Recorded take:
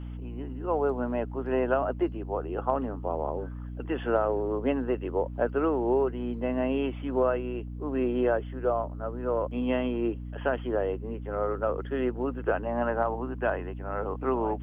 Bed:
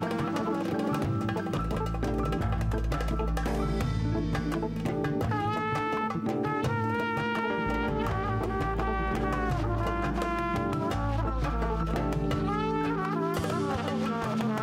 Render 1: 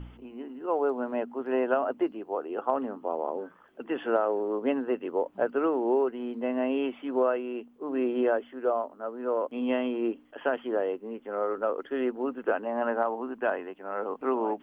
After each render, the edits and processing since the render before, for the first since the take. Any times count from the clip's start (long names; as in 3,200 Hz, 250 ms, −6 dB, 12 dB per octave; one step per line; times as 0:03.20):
hum removal 60 Hz, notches 5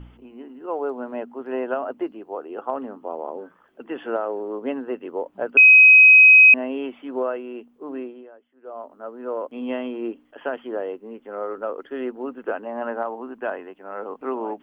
0:05.57–0:06.54: beep over 2,530 Hz −6.5 dBFS
0:07.91–0:08.92: duck −21.5 dB, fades 0.41 s quadratic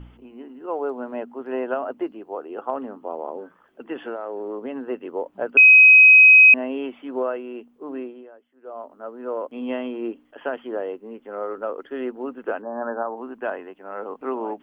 0:03.93–0:04.83: downward compressor, threshold −26 dBFS
0:12.62–0:13.17: linear-phase brick-wall low-pass 1,800 Hz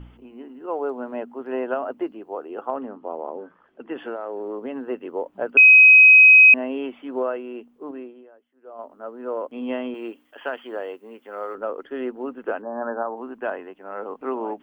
0:02.67–0:03.97: high-frequency loss of the air 130 metres
0:07.91–0:08.79: clip gain −4.5 dB
0:09.94–0:11.55: spectral tilt +3 dB per octave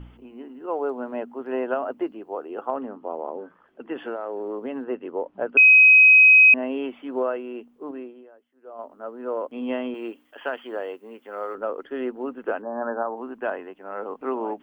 0:04.84–0:06.63: high-frequency loss of the air 160 metres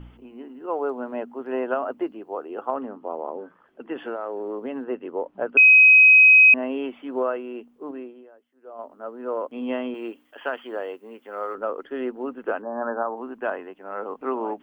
mains-hum notches 50/100 Hz
dynamic equaliser 1,200 Hz, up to +3 dB, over −38 dBFS, Q 2.6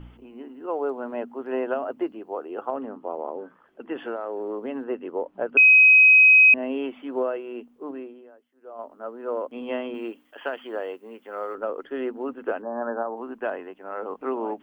mains-hum notches 50/100/150/200/250 Hz
dynamic equaliser 1,200 Hz, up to −7 dB, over −33 dBFS, Q 1.3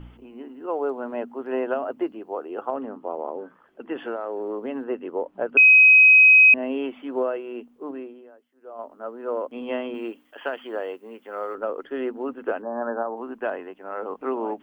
level +1 dB